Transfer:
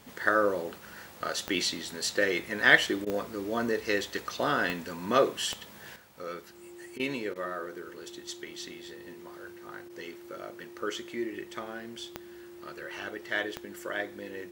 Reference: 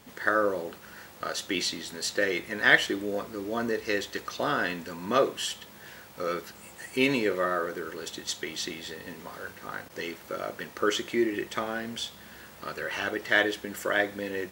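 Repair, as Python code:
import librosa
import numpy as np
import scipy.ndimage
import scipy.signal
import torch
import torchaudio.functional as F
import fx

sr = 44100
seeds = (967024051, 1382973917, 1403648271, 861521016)

y = fx.fix_declick_ar(x, sr, threshold=10.0)
y = fx.notch(y, sr, hz=350.0, q=30.0)
y = fx.fix_interpolate(y, sr, at_s=(3.05, 6.98, 7.34), length_ms=14.0)
y = fx.fix_level(y, sr, at_s=5.96, step_db=8.0)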